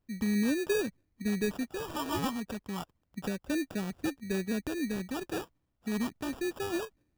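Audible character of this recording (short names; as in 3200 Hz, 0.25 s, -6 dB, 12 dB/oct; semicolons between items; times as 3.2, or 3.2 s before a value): phasing stages 2, 0.32 Hz, lowest notch 530–1100 Hz; aliases and images of a low sample rate 2100 Hz, jitter 0%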